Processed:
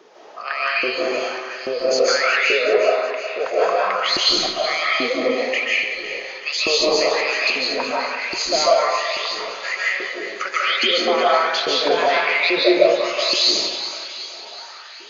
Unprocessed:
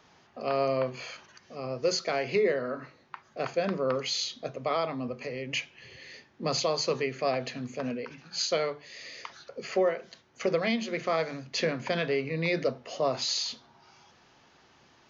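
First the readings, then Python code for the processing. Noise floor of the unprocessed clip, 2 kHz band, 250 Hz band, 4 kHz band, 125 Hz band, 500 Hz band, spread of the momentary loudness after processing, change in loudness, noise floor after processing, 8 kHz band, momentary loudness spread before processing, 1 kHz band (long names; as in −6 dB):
−61 dBFS, +16.5 dB, +6.5 dB, +15.0 dB, below −10 dB, +10.0 dB, 11 LU, +11.5 dB, −38 dBFS, can't be measured, 15 LU, +13.5 dB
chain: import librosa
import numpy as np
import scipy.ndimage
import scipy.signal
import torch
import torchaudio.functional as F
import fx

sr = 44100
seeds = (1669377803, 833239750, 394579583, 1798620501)

p1 = fx.filter_lfo_highpass(x, sr, shape='saw_up', hz=1.2, low_hz=350.0, high_hz=4500.0, q=7.9)
p2 = fx.peak_eq(p1, sr, hz=190.0, db=4.5, octaves=1.3)
p3 = fx.over_compress(p2, sr, threshold_db=-28.0, ratio=-1.0)
p4 = p2 + (p3 * 10.0 ** (2.5 / 20.0))
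p5 = fx.hum_notches(p4, sr, base_hz=60, count=2)
p6 = fx.echo_thinned(p5, sr, ms=372, feedback_pct=59, hz=630.0, wet_db=-11)
p7 = fx.rev_freeverb(p6, sr, rt60_s=1.1, hf_ratio=0.65, predelay_ms=110, drr_db=-6.0)
y = p7 * 10.0 ** (-5.0 / 20.0)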